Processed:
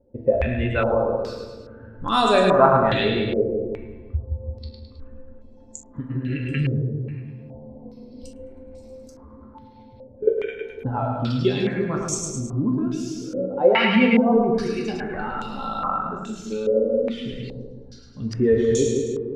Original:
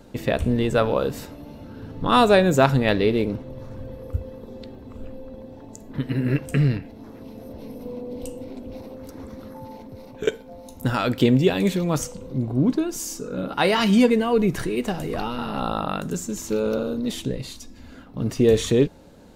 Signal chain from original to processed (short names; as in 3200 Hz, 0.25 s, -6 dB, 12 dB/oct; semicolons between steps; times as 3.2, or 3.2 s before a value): per-bin expansion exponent 1.5; 11.05–11.45 fixed phaser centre 940 Hz, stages 4; split-band echo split 580 Hz, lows 0.168 s, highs 0.106 s, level -4 dB; reverb RT60 0.90 s, pre-delay 6 ms, DRR 1.5 dB; in parallel at +0.5 dB: compressor, threshold -29 dBFS, peak gain reduction 18 dB; on the sum: stepped low-pass 2.4 Hz 540–7100 Hz; gain -4.5 dB